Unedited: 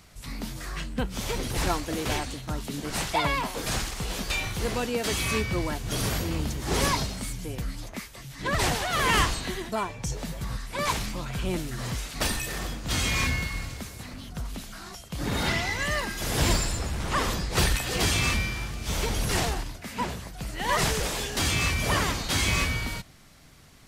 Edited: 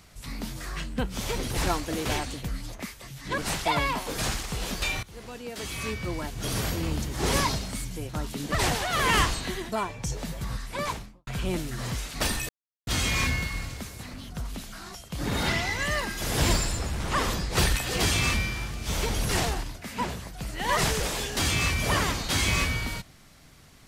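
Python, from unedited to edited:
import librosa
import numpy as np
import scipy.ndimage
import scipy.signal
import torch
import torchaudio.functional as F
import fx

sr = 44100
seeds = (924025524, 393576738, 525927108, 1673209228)

y = fx.studio_fade_out(x, sr, start_s=10.68, length_s=0.59)
y = fx.edit(y, sr, fx.swap(start_s=2.43, length_s=0.43, other_s=7.57, other_length_s=0.95),
    fx.fade_in_from(start_s=4.51, length_s=1.8, floor_db=-19.0),
    fx.silence(start_s=12.49, length_s=0.38), tone=tone)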